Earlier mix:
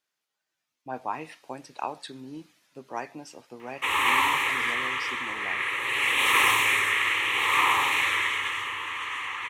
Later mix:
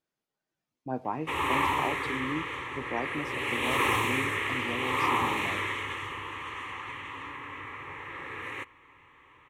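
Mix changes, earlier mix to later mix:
background: entry -2.55 s; master: add tilt shelf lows +9.5 dB, about 700 Hz

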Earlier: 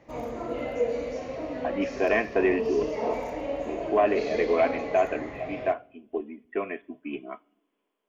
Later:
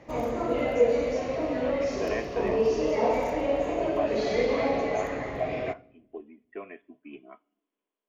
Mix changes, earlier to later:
speech -10.0 dB; background +5.0 dB

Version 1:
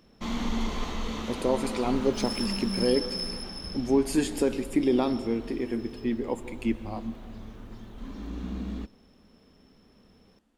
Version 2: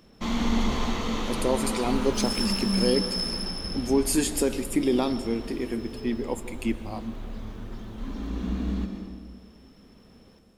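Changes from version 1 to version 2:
speech: remove low-pass 2.8 kHz 6 dB/octave; background: send on

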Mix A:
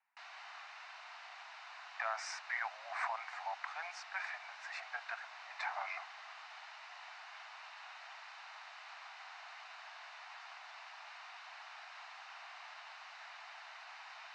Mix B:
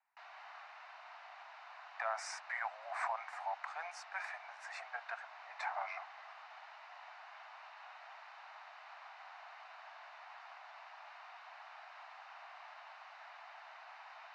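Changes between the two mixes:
speech: remove distance through air 160 m; master: add tilt EQ -4 dB/octave

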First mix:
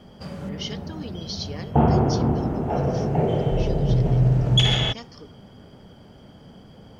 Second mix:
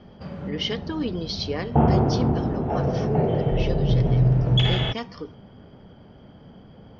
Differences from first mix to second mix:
speech +10.0 dB; master: add distance through air 220 m

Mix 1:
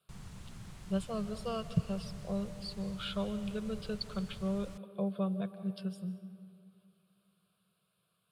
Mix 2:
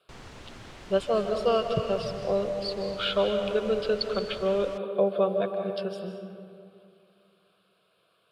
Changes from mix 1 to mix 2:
speech: send +9.0 dB; master: add FFT filter 110 Hz 0 dB, 190 Hz -5 dB, 260 Hz +11 dB, 530 Hz +14 dB, 1.1 kHz +9 dB, 1.7 kHz +11 dB, 2.9 kHz +10 dB, 5.7 kHz +6 dB, 9.8 kHz -3 dB

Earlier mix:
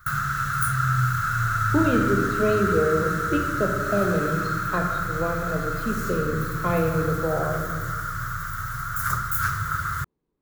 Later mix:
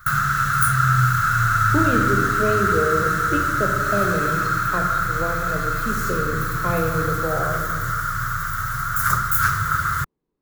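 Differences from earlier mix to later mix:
background +6.0 dB; master: add peaking EQ 71 Hz -3.5 dB 1.8 oct

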